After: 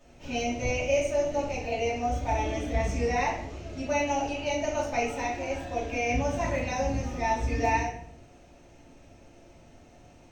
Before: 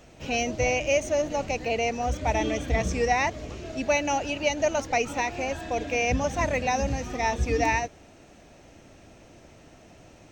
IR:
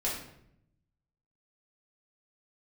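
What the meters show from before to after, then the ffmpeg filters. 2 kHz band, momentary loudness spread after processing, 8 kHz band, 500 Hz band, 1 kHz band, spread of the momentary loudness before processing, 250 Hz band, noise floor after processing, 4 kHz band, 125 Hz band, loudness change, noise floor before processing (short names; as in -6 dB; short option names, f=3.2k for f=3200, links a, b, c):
-4.5 dB, 6 LU, -5.0 dB, -2.5 dB, -2.0 dB, 5 LU, -1.5 dB, -54 dBFS, -5.0 dB, -1.0 dB, -2.5 dB, -52 dBFS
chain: -filter_complex "[1:a]atrim=start_sample=2205,asetrate=52920,aresample=44100[a];[0:a][a]afir=irnorm=-1:irlink=0,volume=-8.5dB"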